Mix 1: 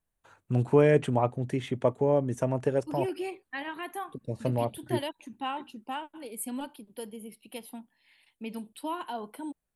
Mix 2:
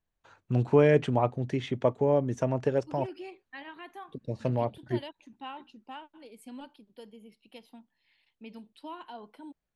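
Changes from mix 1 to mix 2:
second voice −8.0 dB
master: add high shelf with overshoot 7,400 Hz −12 dB, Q 1.5

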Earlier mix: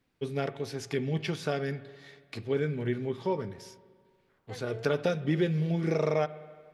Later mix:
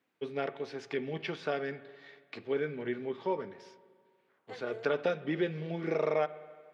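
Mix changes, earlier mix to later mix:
first voice: add band-pass filter 210–3,200 Hz
master: add low-shelf EQ 270 Hz −7 dB

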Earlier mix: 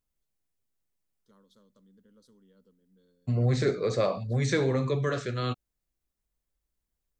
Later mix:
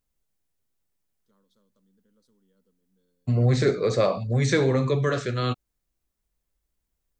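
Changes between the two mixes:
first voice −6.0 dB
second voice +4.5 dB

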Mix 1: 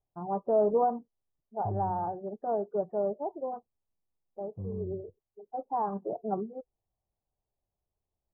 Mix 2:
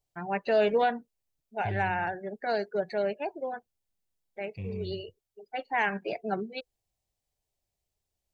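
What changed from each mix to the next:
master: remove Chebyshev low-pass filter 1,200 Hz, order 6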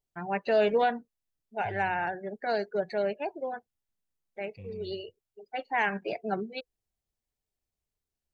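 second voice −8.5 dB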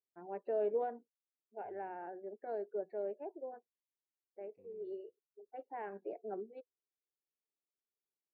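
master: add four-pole ladder band-pass 440 Hz, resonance 40%

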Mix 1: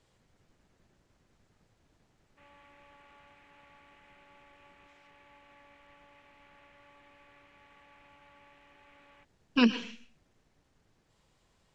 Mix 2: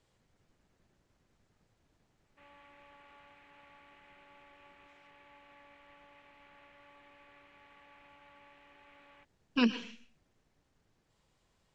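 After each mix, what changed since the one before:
speech −4.0 dB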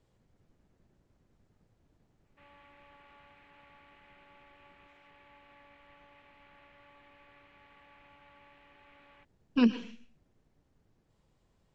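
speech: add tilt shelving filter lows +5 dB, about 770 Hz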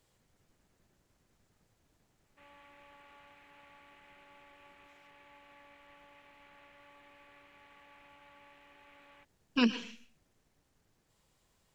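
speech: add tilt shelving filter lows −5 dB, about 770 Hz
master: remove high-frequency loss of the air 58 metres

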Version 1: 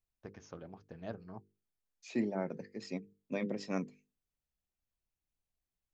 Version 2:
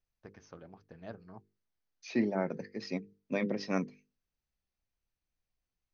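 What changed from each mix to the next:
second voice +6.5 dB
master: add Chebyshev low-pass with heavy ripple 6,300 Hz, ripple 3 dB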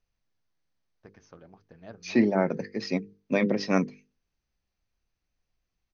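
first voice: entry +0.80 s
second voice +8.0 dB

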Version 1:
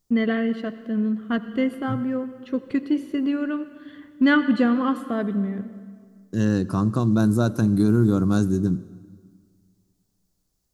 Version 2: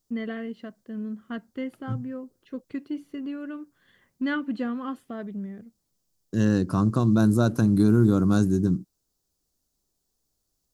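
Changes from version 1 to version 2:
first voice −8.5 dB
reverb: off

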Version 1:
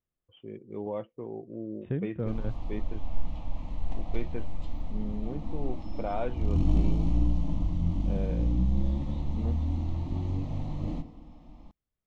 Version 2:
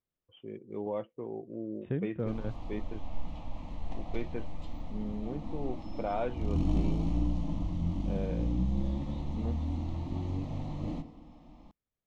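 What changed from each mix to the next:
master: add low-shelf EQ 100 Hz −7.5 dB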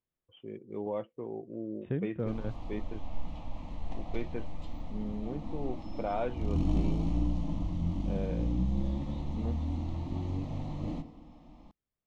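nothing changed

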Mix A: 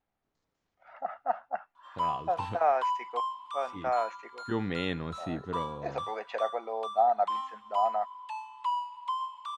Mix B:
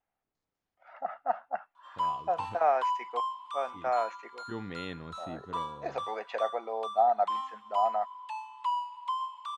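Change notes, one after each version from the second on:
second voice −7.5 dB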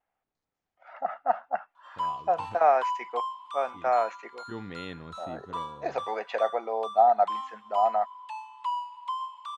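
first voice +4.5 dB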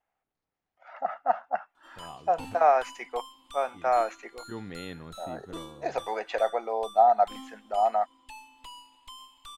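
second voice: add high-frequency loss of the air 170 metres
background: remove high-pass with resonance 1,000 Hz, resonance Q 10
master: remove high-frequency loss of the air 87 metres

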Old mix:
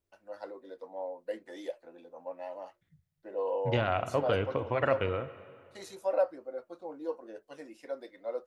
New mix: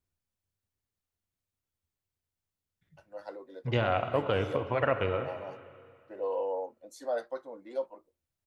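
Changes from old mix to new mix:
first voice: entry +2.85 s
second voice: send +6.0 dB

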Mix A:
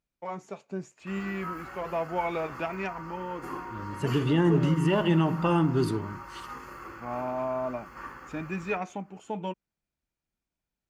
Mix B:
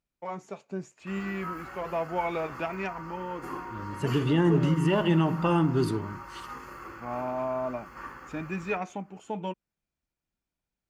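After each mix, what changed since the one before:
nothing changed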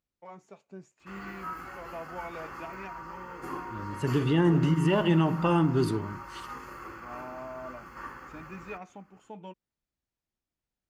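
first voice −10.5 dB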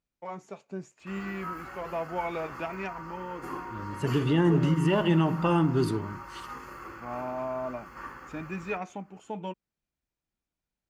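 first voice +8.0 dB

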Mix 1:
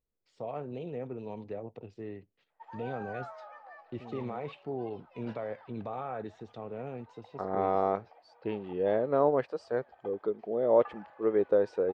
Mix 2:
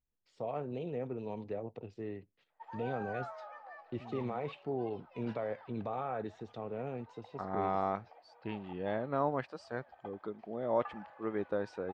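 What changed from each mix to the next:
second voice: add parametric band 460 Hz −12 dB 1 octave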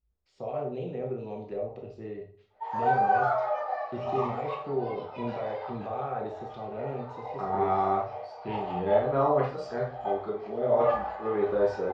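reverb: on, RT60 0.45 s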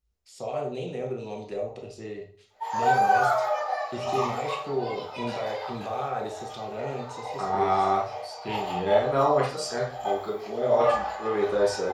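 master: remove head-to-tape spacing loss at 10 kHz 36 dB

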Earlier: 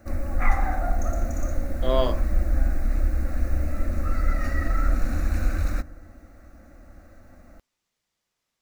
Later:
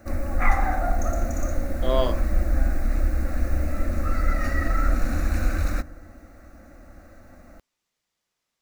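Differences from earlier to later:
background +3.5 dB
master: add low-shelf EQ 170 Hz −3.5 dB

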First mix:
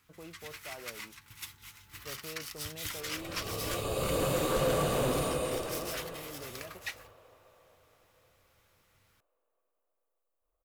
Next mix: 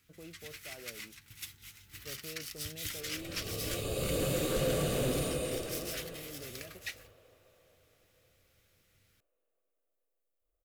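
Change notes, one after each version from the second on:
master: add parametric band 980 Hz −13 dB 0.91 octaves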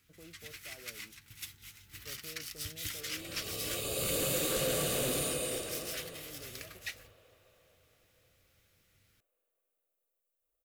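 speech −4.5 dB
second sound: add spectral tilt +2 dB per octave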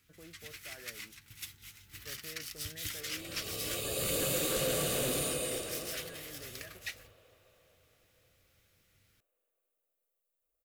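speech: add low-pass with resonance 1,800 Hz, resonance Q 7.8

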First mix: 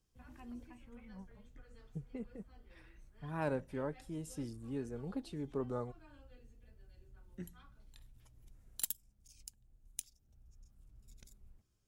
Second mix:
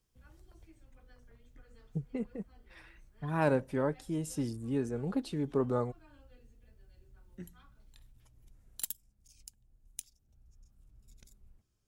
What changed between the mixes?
first voice: muted
second voice +8.0 dB

